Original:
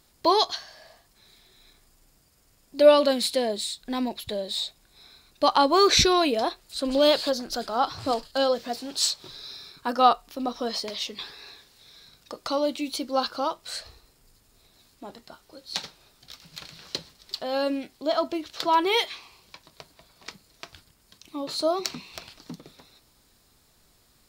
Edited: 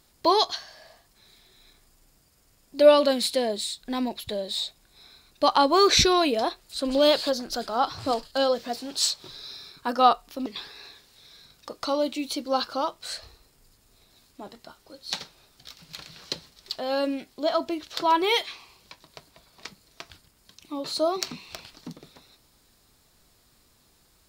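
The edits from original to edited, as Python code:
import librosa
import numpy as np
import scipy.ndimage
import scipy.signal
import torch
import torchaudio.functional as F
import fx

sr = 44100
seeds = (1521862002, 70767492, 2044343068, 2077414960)

y = fx.edit(x, sr, fx.cut(start_s=10.46, length_s=0.63), tone=tone)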